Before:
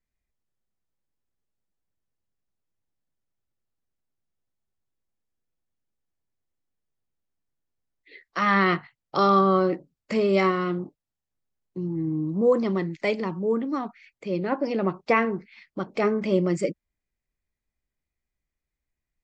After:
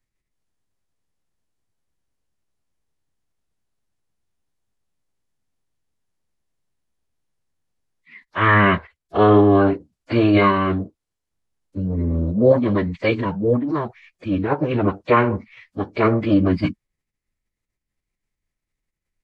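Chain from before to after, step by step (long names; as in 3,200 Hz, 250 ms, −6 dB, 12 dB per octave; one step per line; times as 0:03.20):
phase-vocoder pitch shift with formants kept −11 semitones
level +6.5 dB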